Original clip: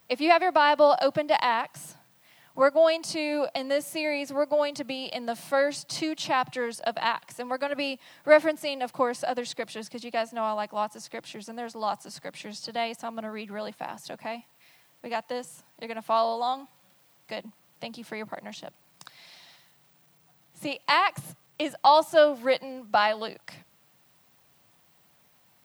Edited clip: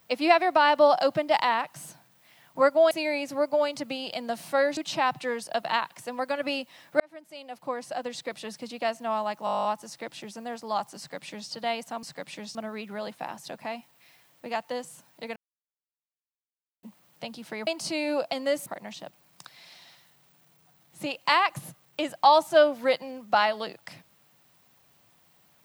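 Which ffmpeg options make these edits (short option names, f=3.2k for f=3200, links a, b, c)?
-filter_complex "[0:a]asplit=20[a][b][c][d][e][f][g][h][i][j][k][l][m][n][o][p][q][r][s][t];[a]atrim=end=2.912[u];[b]atrim=start=3.898:end=5.762[v];[c]atrim=start=6.088:end=8.32,asetpts=PTS-STARTPTS,afade=t=out:st=2.228:d=0.004:c=hsin[w];[d]atrim=start=8.32:end=10.792,asetpts=PTS-STARTPTS,afade=t=in:d=1.56[x];[e]atrim=start=10.768:end=10.792[y];[f]atrim=start=10.768:end=10.792[z];[g]atrim=start=10.768:end=10.792[aa];[h]atrim=start=10.768:end=10.792[ab];[i]atrim=start=10.768:end=10.792[ac];[j]atrim=start=10.768:end=10.792[ad];[k]atrim=start=10.768:end=10.792[ae];[l]atrim=start=10.768:end=10.792[af];[m]atrim=start=10.768:end=10.792[ag];[n]atrim=start=10.768:end=13.152[ah];[o]atrim=start=12.098:end=12.622[ai];[p]atrim=start=13.148:end=15.96,asetpts=PTS-STARTPTS,afade=t=out:st=2.808:d=0.004:c=hsin[aj];[q]atrim=start=15.96:end=17.43,asetpts=PTS-STARTPTS,volume=0[ak];[r]atrim=start=17.43:end=18.272,asetpts=PTS-STARTPTS,afade=t=in:d=0.004:c=hsin[al];[s]atrim=start=2.908:end=3.902[am];[t]atrim=start=18.268[an];[u][v]acrossfade=d=0.004:c1=hsin:c2=hsin[ao];[w][x]concat=n=2:v=0:a=1[ap];[ao][ap]acrossfade=d=0.004:c1=hsin:c2=hsin[aq];[aq][y]acrossfade=d=0.004:c1=hsin:c2=hsin[ar];[ar][z]acrossfade=d=0.004:c1=hsin:c2=hsin[as];[as][aa]acrossfade=d=0.004:c1=hsin:c2=hsin[at];[at][ab]acrossfade=d=0.004:c1=hsin:c2=hsin[au];[au][ac]acrossfade=d=0.004:c1=hsin:c2=hsin[av];[av][ad]acrossfade=d=0.004:c1=hsin:c2=hsin[aw];[aw][ae]acrossfade=d=0.004:c1=hsin:c2=hsin[ax];[ax][af]acrossfade=d=0.004:c1=hsin:c2=hsin[ay];[ay][ag]acrossfade=d=0.004:c1=hsin:c2=hsin[az];[az][ah]acrossfade=d=0.004:c1=hsin:c2=hsin[ba];[ba][ai]acrossfade=d=0.004:c1=hsin:c2=hsin[bb];[aj][ak][al]concat=n=3:v=0:a=1[bc];[bb][bc]acrossfade=d=0.004:c1=hsin:c2=hsin[bd];[bd][am]acrossfade=d=0.004:c1=hsin:c2=hsin[be];[be][an]acrossfade=d=0.004:c1=hsin:c2=hsin"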